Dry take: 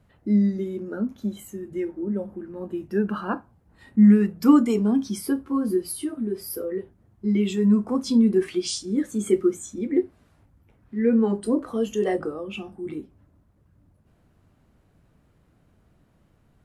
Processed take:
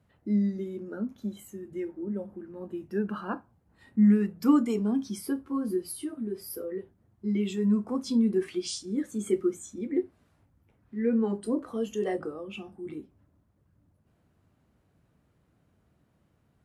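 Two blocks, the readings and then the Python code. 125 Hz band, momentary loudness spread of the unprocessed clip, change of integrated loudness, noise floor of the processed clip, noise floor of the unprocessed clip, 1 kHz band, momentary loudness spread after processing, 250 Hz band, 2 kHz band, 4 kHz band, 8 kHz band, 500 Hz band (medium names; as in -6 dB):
-6.0 dB, 16 LU, -6.0 dB, -70 dBFS, -62 dBFS, -6.0 dB, 16 LU, -6.0 dB, -6.0 dB, -6.0 dB, -6.0 dB, -6.0 dB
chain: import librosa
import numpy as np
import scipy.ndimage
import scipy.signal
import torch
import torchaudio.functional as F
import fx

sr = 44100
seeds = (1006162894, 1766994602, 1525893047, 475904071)

y = scipy.signal.sosfilt(scipy.signal.butter(2, 59.0, 'highpass', fs=sr, output='sos'), x)
y = y * librosa.db_to_amplitude(-6.0)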